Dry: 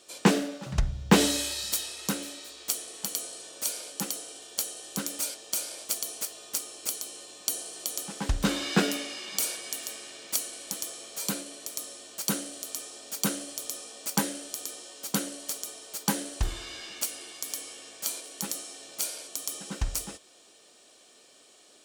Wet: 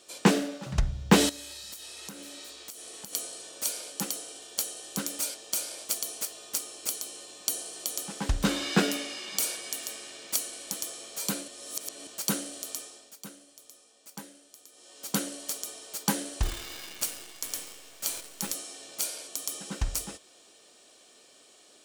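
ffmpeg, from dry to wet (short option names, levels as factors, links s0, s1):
-filter_complex "[0:a]asettb=1/sr,asplit=3[s0][s1][s2];[s0]atrim=end=1.294[s3];[s1]atrim=start=1.29:end=3.13,asetpts=PTS-STARTPTS,afade=t=in:d=0.004:c=qsin,afade=t=out:st=1.836:d=0.004:c=qsin,acompressor=threshold=0.0112:ratio=8:attack=3.2:release=140:knee=1:detection=peak[s4];[s2]atrim=start=3.126[s5];[s3][s4]acrossfade=d=0.004:c1=hsin:c2=qsin[s6];[s6][s5]acrossfade=d=0.004:c1=qsin:c2=hsin,asettb=1/sr,asplit=3[s7][s8][s9];[s7]atrim=end=16.434[s10];[s8]atrim=start=16.43:end=18.54,asetpts=PTS-STARTPTS,afade=t=in:d=0.004:c=qsin,afade=t=out:st=2.106:d=0.004:c=qsin,acrusher=bits=7:dc=4:mix=0:aa=0.000001[s11];[s9]atrim=start=18.536[s12];[s10][s11]acrossfade=d=0.004:c1=hsin:c2=qsin[s13];[s13][s12]acrossfade=d=0.004:c1=qsin:c2=hsin,asplit=5[s14][s15][s16][s17][s18];[s14]atrim=end=11.482[s19];[s15]atrim=start=11.478:end=12.072,asetpts=PTS-STARTPTS,areverse[s20];[s16]atrim=start=12.068:end=13.17,asetpts=PTS-STARTPTS,afade=t=out:st=0.642:d=0.46:silence=0.149624[s21];[s17]atrim=start=13.17:end=14.72,asetpts=PTS-STARTPTS,volume=0.15[s22];[s18]atrim=start=14.72,asetpts=PTS-STARTPTS,afade=t=in:d=0.46:silence=0.149624[s23];[s19][s20]acrossfade=d=0.004:c1=hsin:c2=hsin[s24];[s21][s22][s23]concat=n=3:v=0:a=1[s25];[s24][s25]acrossfade=d=0.004:c1=hsin:c2=hsin"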